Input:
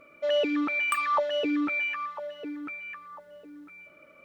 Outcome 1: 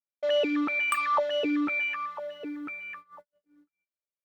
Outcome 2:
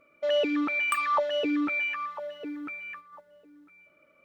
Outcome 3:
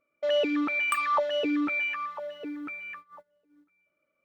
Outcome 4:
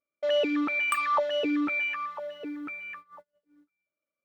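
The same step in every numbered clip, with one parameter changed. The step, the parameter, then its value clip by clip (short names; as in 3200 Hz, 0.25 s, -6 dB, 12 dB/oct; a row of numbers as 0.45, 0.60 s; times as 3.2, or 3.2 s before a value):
gate, range: -54, -8, -23, -37 dB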